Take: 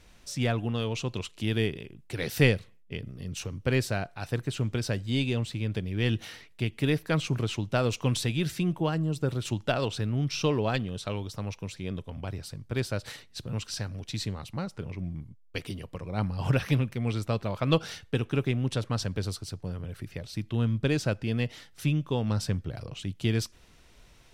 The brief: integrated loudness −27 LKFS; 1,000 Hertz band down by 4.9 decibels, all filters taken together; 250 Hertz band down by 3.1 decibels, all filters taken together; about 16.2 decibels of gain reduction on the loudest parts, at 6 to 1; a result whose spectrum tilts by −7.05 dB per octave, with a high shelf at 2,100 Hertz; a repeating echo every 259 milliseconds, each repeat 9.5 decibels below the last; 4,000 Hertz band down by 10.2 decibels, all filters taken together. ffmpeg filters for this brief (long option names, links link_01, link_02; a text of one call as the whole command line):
ffmpeg -i in.wav -af "equalizer=frequency=250:width_type=o:gain=-4,equalizer=frequency=1000:width_type=o:gain=-4.5,highshelf=frequency=2100:gain=-8,equalizer=frequency=4000:width_type=o:gain=-5.5,acompressor=threshold=-37dB:ratio=6,aecho=1:1:259|518|777|1036:0.335|0.111|0.0365|0.012,volume=14.5dB" out.wav